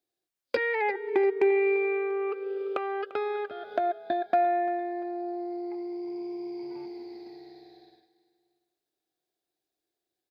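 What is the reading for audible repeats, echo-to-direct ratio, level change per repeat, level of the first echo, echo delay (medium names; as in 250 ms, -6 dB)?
2, -16.0 dB, -6.5 dB, -17.0 dB, 345 ms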